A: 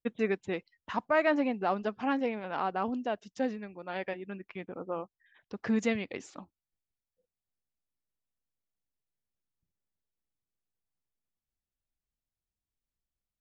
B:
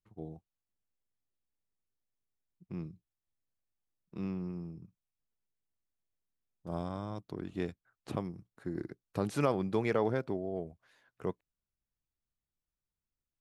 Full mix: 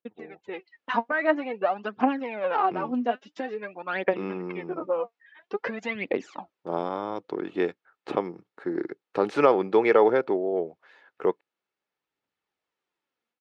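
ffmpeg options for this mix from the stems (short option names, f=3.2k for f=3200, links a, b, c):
-filter_complex "[0:a]acompressor=threshold=-33dB:ratio=6,aphaser=in_gain=1:out_gain=1:delay=4.4:decay=0.72:speed=0.49:type=triangular,volume=-3.5dB[a];[1:a]equalizer=f=62:w=0.97:g=-13.5,aecho=1:1:2.3:0.32,volume=0.5dB,asplit=2[b][c];[c]apad=whole_len=591174[d];[a][d]sidechaincompress=threshold=-40dB:ratio=3:attack=7.4:release=1300[e];[e][b]amix=inputs=2:normalize=0,dynaudnorm=f=350:g=3:m=12dB,highpass=300,lowpass=2.9k"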